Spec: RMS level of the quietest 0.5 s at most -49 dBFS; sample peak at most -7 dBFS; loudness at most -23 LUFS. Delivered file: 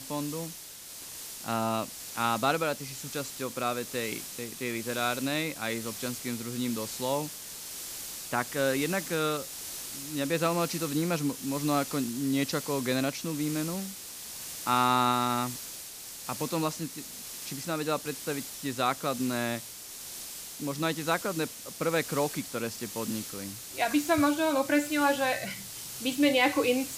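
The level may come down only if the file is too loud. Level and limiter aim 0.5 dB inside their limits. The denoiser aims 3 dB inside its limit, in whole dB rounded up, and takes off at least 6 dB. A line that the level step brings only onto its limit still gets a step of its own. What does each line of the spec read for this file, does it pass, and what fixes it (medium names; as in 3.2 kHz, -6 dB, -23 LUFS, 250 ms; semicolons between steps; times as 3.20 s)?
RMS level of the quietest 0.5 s -45 dBFS: fail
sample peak -11.0 dBFS: pass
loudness -30.5 LUFS: pass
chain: noise reduction 7 dB, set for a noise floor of -45 dBFS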